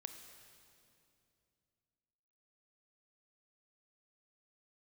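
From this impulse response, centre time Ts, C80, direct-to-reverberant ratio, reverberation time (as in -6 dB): 37 ms, 8.0 dB, 6.5 dB, 2.6 s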